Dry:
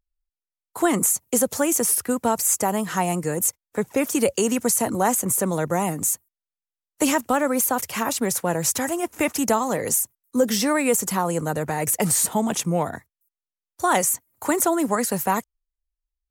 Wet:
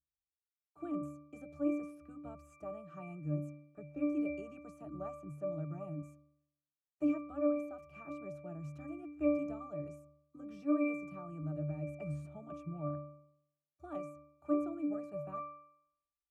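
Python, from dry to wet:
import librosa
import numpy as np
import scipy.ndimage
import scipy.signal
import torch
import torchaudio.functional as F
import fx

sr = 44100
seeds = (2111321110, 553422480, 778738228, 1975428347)

y = fx.octave_resonator(x, sr, note='D', decay_s=0.71)
y = y * 10.0 ** (3.0 / 20.0)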